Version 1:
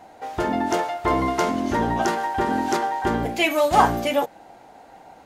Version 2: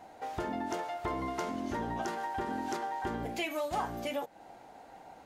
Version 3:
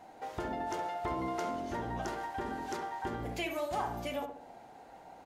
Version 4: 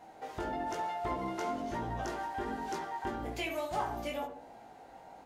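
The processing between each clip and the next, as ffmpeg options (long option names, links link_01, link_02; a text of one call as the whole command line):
ffmpeg -i in.wav -af "acompressor=threshold=-29dB:ratio=3,volume=-5.5dB" out.wav
ffmpeg -i in.wav -filter_complex "[0:a]asplit=2[link_01][link_02];[link_02]adelay=67,lowpass=frequency=1200:poles=1,volume=-4dB,asplit=2[link_03][link_04];[link_04]adelay=67,lowpass=frequency=1200:poles=1,volume=0.54,asplit=2[link_05][link_06];[link_06]adelay=67,lowpass=frequency=1200:poles=1,volume=0.54,asplit=2[link_07][link_08];[link_08]adelay=67,lowpass=frequency=1200:poles=1,volume=0.54,asplit=2[link_09][link_10];[link_10]adelay=67,lowpass=frequency=1200:poles=1,volume=0.54,asplit=2[link_11][link_12];[link_12]adelay=67,lowpass=frequency=1200:poles=1,volume=0.54,asplit=2[link_13][link_14];[link_14]adelay=67,lowpass=frequency=1200:poles=1,volume=0.54[link_15];[link_01][link_03][link_05][link_07][link_09][link_11][link_13][link_15]amix=inputs=8:normalize=0,volume=-2dB" out.wav
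ffmpeg -i in.wav -af "flanger=delay=18:depth=2.6:speed=1.1,volume=3dB" out.wav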